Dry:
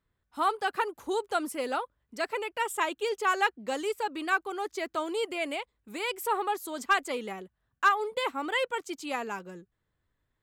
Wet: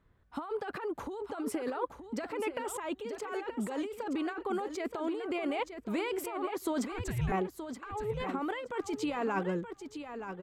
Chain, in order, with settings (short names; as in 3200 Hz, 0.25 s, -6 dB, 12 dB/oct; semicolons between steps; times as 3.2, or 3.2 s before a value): LPF 1400 Hz 6 dB/oct; negative-ratio compressor -40 dBFS, ratio -1; 6.92–7.32 frequency shift -370 Hz; feedback echo 0.924 s, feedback 18%, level -9 dB; gain +4.5 dB